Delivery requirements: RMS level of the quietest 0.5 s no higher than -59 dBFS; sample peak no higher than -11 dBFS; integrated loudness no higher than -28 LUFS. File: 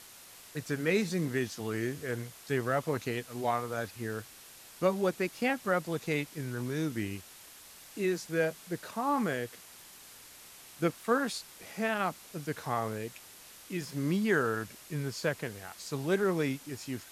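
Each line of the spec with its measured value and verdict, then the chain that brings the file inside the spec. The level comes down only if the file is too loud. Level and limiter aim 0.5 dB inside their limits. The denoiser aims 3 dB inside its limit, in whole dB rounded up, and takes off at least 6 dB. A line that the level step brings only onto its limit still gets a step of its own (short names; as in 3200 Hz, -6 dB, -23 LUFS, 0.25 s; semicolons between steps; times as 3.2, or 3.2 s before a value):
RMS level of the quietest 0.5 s -52 dBFS: fail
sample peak -13.5 dBFS: OK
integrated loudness -33.0 LUFS: OK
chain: denoiser 10 dB, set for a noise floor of -52 dBFS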